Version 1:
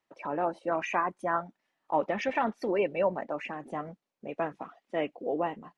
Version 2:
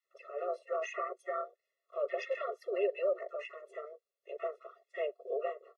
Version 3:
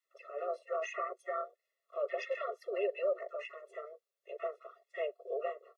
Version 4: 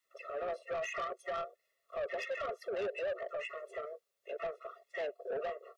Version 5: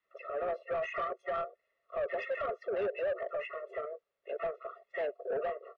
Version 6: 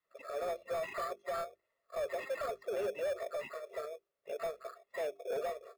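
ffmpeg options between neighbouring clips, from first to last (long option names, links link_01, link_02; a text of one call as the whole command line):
ffmpeg -i in.wav -filter_complex "[0:a]acrossover=split=1300[link_01][link_02];[link_01]adelay=40[link_03];[link_03][link_02]amix=inputs=2:normalize=0,tremolo=f=300:d=0.621,afftfilt=real='re*eq(mod(floor(b*sr/1024/360),2),1)':imag='im*eq(mod(floor(b*sr/1024/360),2),1)':win_size=1024:overlap=0.75" out.wav
ffmpeg -i in.wav -af "highpass=400" out.wav
ffmpeg -i in.wav -filter_complex "[0:a]asplit=2[link_01][link_02];[link_02]asoftclip=type=hard:threshold=-32.5dB,volume=-6dB[link_03];[link_01][link_03]amix=inputs=2:normalize=0,acompressor=threshold=-39dB:ratio=1.5,asoftclip=type=tanh:threshold=-34.5dB,volume=2.5dB" out.wav
ffmpeg -i in.wav -af "lowpass=2200,volume=3.5dB" out.wav
ffmpeg -i in.wav -filter_complex "[0:a]bandreject=frequency=50:width_type=h:width=6,bandreject=frequency=100:width_type=h:width=6,bandreject=frequency=150:width_type=h:width=6,bandreject=frequency=200:width_type=h:width=6,bandreject=frequency=250:width_type=h:width=6,bandreject=frequency=300:width_type=h:width=6,bandreject=frequency=350:width_type=h:width=6,bandreject=frequency=400:width_type=h:width=6,asplit=2[link_01][link_02];[link_02]acrusher=samples=15:mix=1:aa=0.000001,volume=-7.5dB[link_03];[link_01][link_03]amix=inputs=2:normalize=0,volume=-5dB" out.wav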